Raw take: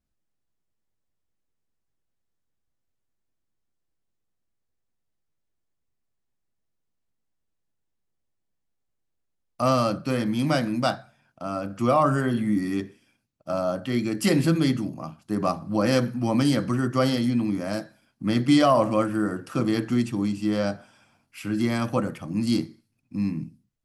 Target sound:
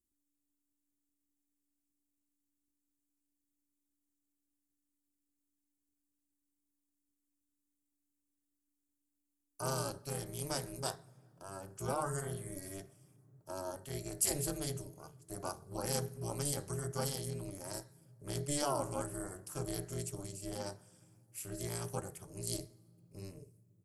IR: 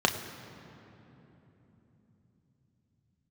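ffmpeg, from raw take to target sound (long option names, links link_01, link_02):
-filter_complex "[0:a]firequalizer=gain_entry='entry(130,0);entry(200,-28);entry(330,-7);entry(2800,-9);entry(7700,14)':delay=0.05:min_phase=1,tremolo=f=290:d=0.974,asplit=2[link_01][link_02];[1:a]atrim=start_sample=2205[link_03];[link_02][link_03]afir=irnorm=-1:irlink=0,volume=-29.5dB[link_04];[link_01][link_04]amix=inputs=2:normalize=0,volume=-5.5dB"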